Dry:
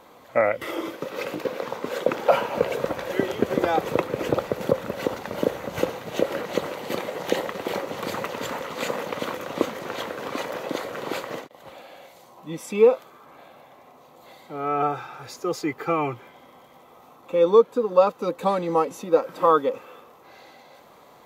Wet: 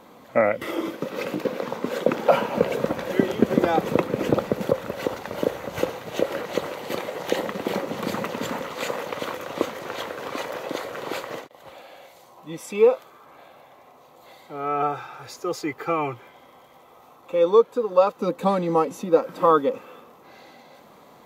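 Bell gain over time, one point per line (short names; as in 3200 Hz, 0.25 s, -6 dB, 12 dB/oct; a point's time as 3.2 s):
bell 210 Hz 1.1 oct
+8 dB
from 4.63 s -2 dB
from 7.39 s +7.5 dB
from 8.68 s -4 dB
from 18.17 s +6 dB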